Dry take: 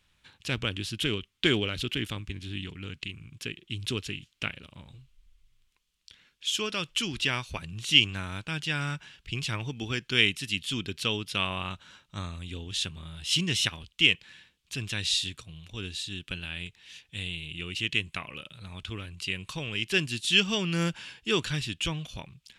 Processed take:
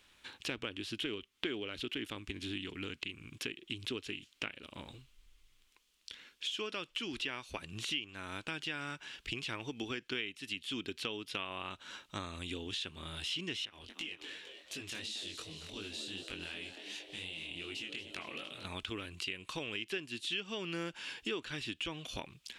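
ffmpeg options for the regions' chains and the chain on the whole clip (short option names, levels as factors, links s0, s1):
-filter_complex "[0:a]asettb=1/sr,asplit=3[s0][s1][s2];[s0]atrim=end=13.654[s3];[s1]atrim=start=13.65:end=18.65,asetpts=PTS-STARTPTS,afade=t=in:d=0.004:c=qsin,afade=t=out:st=4.996:d=0.004:c=qsin,acompressor=threshold=0.00891:ratio=4:attack=3.2:release=140:knee=1:detection=peak,asplit=9[s4][s5][s6][s7][s8][s9][s10][s11][s12];[s5]adelay=230,afreqshift=110,volume=0.266[s13];[s6]adelay=460,afreqshift=220,volume=0.17[s14];[s7]adelay=690,afreqshift=330,volume=0.108[s15];[s8]adelay=920,afreqshift=440,volume=0.07[s16];[s9]adelay=1150,afreqshift=550,volume=0.0447[s17];[s10]adelay=1380,afreqshift=660,volume=0.0285[s18];[s11]adelay=1610,afreqshift=770,volume=0.0182[s19];[s12]adelay=1840,afreqshift=880,volume=0.0117[s20];[s4][s13][s14][s15][s16][s17][s18][s19][s20]amix=inputs=9:normalize=0,atrim=end_sample=220500,flanger=delay=19:depth=4.7:speed=2.7[s21];[s2]atrim=start=18.646[s22];[s3][s21]acrossfade=d=0.004:c1=hsin:c2=qsin[s23];[s23][s22]acrossfade=d=0.004:c1=qsin:c2=hsin,acrossover=split=3700[s24][s25];[s25]acompressor=threshold=0.00562:ratio=4:attack=1:release=60[s26];[s24][s26]amix=inputs=2:normalize=0,lowshelf=f=210:t=q:w=1.5:g=-9,acompressor=threshold=0.00708:ratio=5,volume=1.88"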